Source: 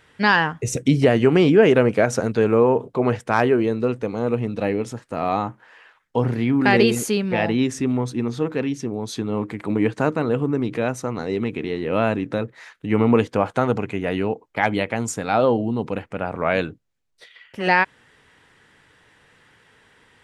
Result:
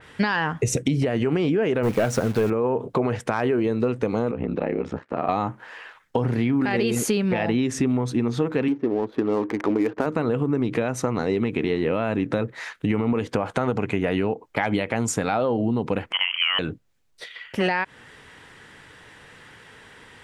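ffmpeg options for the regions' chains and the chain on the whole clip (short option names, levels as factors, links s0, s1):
-filter_complex "[0:a]asettb=1/sr,asplit=3[s0][s1][s2];[s0]atrim=end=1.834[s3];[s1]atrim=start=1.83:end=2.5,asetpts=PTS-STARTPTS,afade=t=in:d=0.004:c=qsin,afade=t=out:st=0.666:d=0.004:c=qsin,lowshelf=f=98:g=7.5,acrusher=bits=7:dc=4:mix=0:aa=0.000001,volume=4.47,asoftclip=hard,volume=0.224[s4];[s2]atrim=start=2.496[s5];[s3][s4]acrossfade=d=0.004:c1=hsin:c2=qsin[s6];[s6][s5]acrossfade=d=0.004:c1=qsin:c2=hsin,asettb=1/sr,asplit=3[s7][s8][s9];[s7]atrim=end=4.314[s10];[s8]atrim=start=4.31:end=5.29,asetpts=PTS-STARTPTS,afade=t=in:d=0.004:c=qsin,afade=t=out:st=0.976:d=0.004:c=qsin,highpass=160,lowpass=2200,acompressor=threshold=0.0501:ratio=3:attack=3.2:release=140:knee=1:detection=peak,aeval=exprs='val(0)*sin(2*PI*33*n/s)':c=same[s11];[s9]atrim=start=5.286[s12];[s10][s11]acrossfade=d=0.004:c1=hsin:c2=qsin[s13];[s13][s12]acrossfade=d=0.004:c1=qsin:c2=hsin,asettb=1/sr,asplit=3[s14][s15][s16];[s14]atrim=end=8.684[s17];[s15]atrim=start=8.68:end=10.06,asetpts=PTS-STARTPTS,afade=t=in:d=0.004:c=qsin,afade=t=out:st=1.376:d=0.004:c=qsin,lowpass=2600,lowshelf=f=220:t=q:w=1.5:g=-10,adynamicsmooth=sensitivity=6:basefreq=630[s18];[s16]atrim=start=10.056[s19];[s17][s18]acrossfade=d=0.004:c1=hsin:c2=qsin[s20];[s20][s19]acrossfade=d=0.004:c1=qsin:c2=hsin,asettb=1/sr,asplit=3[s21][s22][s23];[s21]atrim=end=16.124[s24];[s22]atrim=start=16.12:end=16.59,asetpts=PTS-STARTPTS,afade=t=in:d=0.004:c=qsin,afade=t=out:st=0.466:d=0.004:c=qsin,highpass=f=340:w=0.5412,highpass=f=340:w=1.3066,lowpass=f=3000:t=q:w=0.5098,lowpass=f=3000:t=q:w=0.6013,lowpass=f=3000:t=q:w=0.9,lowpass=f=3000:t=q:w=2.563,afreqshift=-3500[s25];[s23]atrim=start=16.586[s26];[s24][s25]acrossfade=d=0.004:c1=hsin:c2=qsin[s27];[s27][s26]acrossfade=d=0.004:c1=qsin:c2=hsin,alimiter=limit=0.224:level=0:latency=1:release=90,acompressor=threshold=0.0447:ratio=6,adynamicequalizer=threshold=0.00355:dfrequency=3500:dqfactor=0.7:tfrequency=3500:tqfactor=0.7:attack=5:release=100:ratio=0.375:range=1.5:mode=cutabove:tftype=highshelf,volume=2.51"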